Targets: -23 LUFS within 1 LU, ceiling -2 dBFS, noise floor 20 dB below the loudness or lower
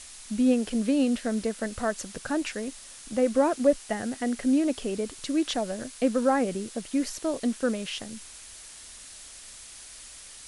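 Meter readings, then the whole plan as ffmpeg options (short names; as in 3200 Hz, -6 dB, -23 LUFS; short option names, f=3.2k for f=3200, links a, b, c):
noise floor -46 dBFS; noise floor target -48 dBFS; loudness -27.5 LUFS; peak -10.0 dBFS; loudness target -23.0 LUFS
-> -af "afftdn=nr=6:nf=-46"
-af "volume=4.5dB"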